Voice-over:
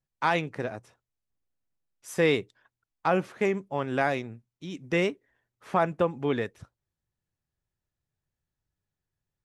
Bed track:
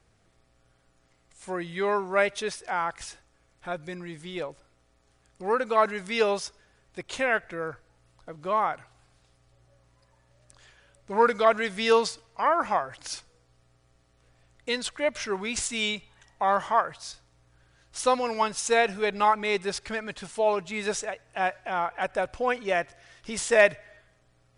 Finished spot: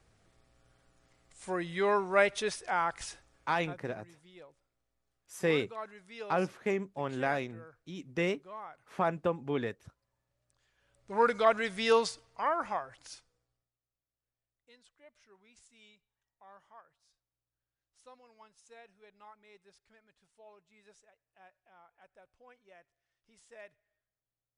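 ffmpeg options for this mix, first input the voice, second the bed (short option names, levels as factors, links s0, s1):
-filter_complex "[0:a]adelay=3250,volume=0.531[s0];[1:a]volume=4.47,afade=t=out:st=3.36:d=0.43:silence=0.133352,afade=t=in:st=10.71:d=0.58:silence=0.177828,afade=t=out:st=12.03:d=1.68:silence=0.0398107[s1];[s0][s1]amix=inputs=2:normalize=0"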